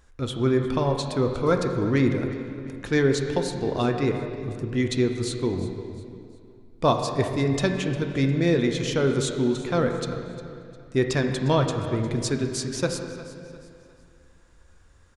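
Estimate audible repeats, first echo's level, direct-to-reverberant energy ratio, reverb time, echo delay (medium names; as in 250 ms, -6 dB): 3, -16.5 dB, 3.5 dB, 2.4 s, 354 ms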